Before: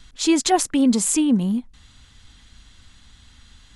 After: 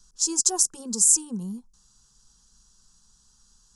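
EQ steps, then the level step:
dynamic equaliser 8,200 Hz, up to +7 dB, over −37 dBFS, Q 1.2
high shelf with overshoot 4,400 Hz +7.5 dB, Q 3
phaser with its sweep stopped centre 420 Hz, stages 8
−10.5 dB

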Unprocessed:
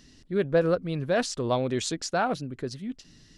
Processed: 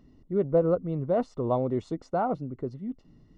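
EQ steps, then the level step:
Savitzky-Golay smoothing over 65 samples
0.0 dB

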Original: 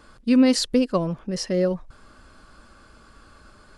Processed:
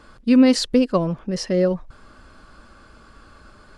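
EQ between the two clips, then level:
high-shelf EQ 7,000 Hz −7.5 dB
+3.0 dB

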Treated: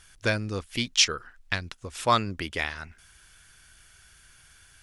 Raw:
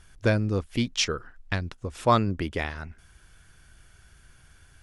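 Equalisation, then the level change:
tilt shelving filter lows −6.5 dB, about 1,100 Hz
0.0 dB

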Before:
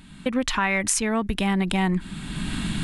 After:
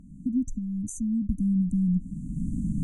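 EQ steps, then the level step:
linear-phase brick-wall band-stop 300–5,900 Hz
high-shelf EQ 2,600 Hz −11.5 dB
high-shelf EQ 8,600 Hz −11 dB
0.0 dB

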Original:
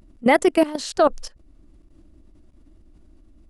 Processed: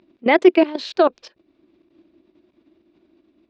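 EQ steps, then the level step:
loudspeaker in its box 310–4,500 Hz, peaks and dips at 360 Hz +9 dB, 660 Hz +3 dB, 1,000 Hz +5 dB, 1,600 Hz +4 dB, 2,400 Hz +9 dB, 3,700 Hz +6 dB
low-shelf EQ 490 Hz +11 dB
high-shelf EQ 2,400 Hz +8.5 dB
−7.0 dB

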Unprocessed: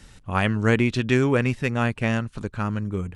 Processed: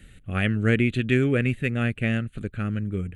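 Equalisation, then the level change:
phaser with its sweep stopped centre 2,300 Hz, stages 4
0.0 dB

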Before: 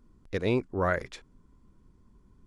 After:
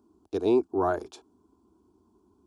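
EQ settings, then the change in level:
high-pass filter 80 Hz 24 dB per octave
flat-topped bell 510 Hz +9 dB
phaser with its sweep stopped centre 530 Hz, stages 6
0.0 dB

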